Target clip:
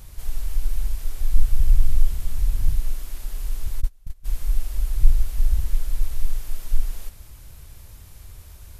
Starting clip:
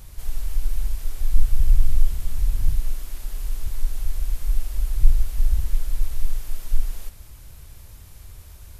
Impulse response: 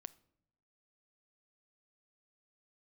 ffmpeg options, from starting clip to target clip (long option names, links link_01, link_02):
-filter_complex "[0:a]asplit=3[link_01][link_02][link_03];[link_01]afade=type=out:start_time=3.8:duration=0.02[link_04];[link_02]agate=range=-27dB:threshold=-14dB:ratio=16:detection=peak,afade=type=in:start_time=3.8:duration=0.02,afade=type=out:start_time=4.24:duration=0.02[link_05];[link_03]afade=type=in:start_time=4.24:duration=0.02[link_06];[link_04][link_05][link_06]amix=inputs=3:normalize=0"